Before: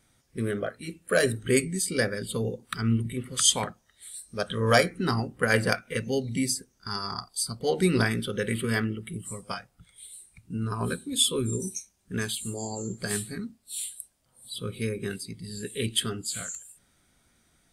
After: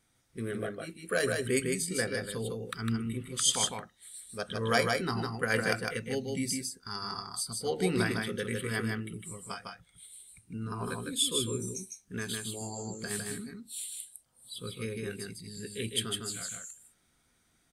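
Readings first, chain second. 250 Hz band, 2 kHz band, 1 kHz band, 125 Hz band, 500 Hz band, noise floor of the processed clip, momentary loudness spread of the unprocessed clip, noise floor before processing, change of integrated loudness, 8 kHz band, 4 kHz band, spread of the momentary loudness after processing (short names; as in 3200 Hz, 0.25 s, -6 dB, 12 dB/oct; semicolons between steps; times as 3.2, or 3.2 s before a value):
-5.5 dB, -4.0 dB, -4.0 dB, -6.5 dB, -5.0 dB, -71 dBFS, 15 LU, -68 dBFS, -4.5 dB, -4.0 dB, -4.0 dB, 15 LU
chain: low shelf 220 Hz -3 dB; notch 590 Hz, Q 12; echo 0.155 s -3.5 dB; gain -5.5 dB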